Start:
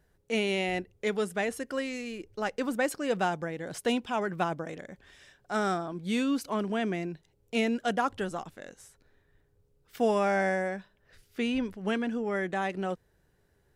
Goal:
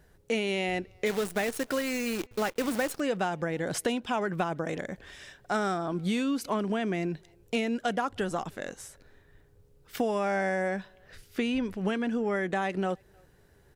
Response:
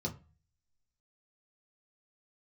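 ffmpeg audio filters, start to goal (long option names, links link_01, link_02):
-filter_complex "[0:a]acompressor=threshold=-34dB:ratio=6,asplit=3[link_01][link_02][link_03];[link_01]afade=type=out:start_time=1.05:duration=0.02[link_04];[link_02]acrusher=bits=8:dc=4:mix=0:aa=0.000001,afade=type=in:start_time=1.05:duration=0.02,afade=type=out:start_time=2.99:duration=0.02[link_05];[link_03]afade=type=in:start_time=2.99:duration=0.02[link_06];[link_04][link_05][link_06]amix=inputs=3:normalize=0,asplit=2[link_07][link_08];[link_08]adelay=310,highpass=300,lowpass=3400,asoftclip=type=hard:threshold=-34.5dB,volume=-29dB[link_09];[link_07][link_09]amix=inputs=2:normalize=0,volume=8dB"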